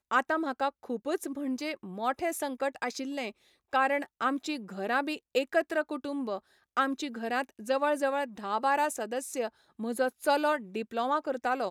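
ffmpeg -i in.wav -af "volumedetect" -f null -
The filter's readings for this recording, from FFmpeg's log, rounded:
mean_volume: -31.3 dB
max_volume: -12.5 dB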